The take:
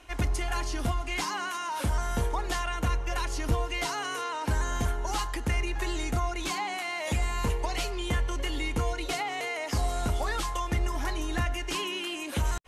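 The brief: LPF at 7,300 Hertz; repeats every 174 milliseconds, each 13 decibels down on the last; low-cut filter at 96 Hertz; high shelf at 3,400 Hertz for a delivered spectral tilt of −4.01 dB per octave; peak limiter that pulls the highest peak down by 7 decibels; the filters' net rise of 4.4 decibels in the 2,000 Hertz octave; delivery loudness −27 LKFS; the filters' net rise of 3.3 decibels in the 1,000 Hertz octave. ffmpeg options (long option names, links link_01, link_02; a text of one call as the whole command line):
ffmpeg -i in.wav -af "highpass=96,lowpass=7300,equalizer=frequency=1000:width_type=o:gain=3,equalizer=frequency=2000:width_type=o:gain=6,highshelf=frequency=3400:gain=-5,alimiter=limit=-23dB:level=0:latency=1,aecho=1:1:174|348|522:0.224|0.0493|0.0108,volume=4.5dB" out.wav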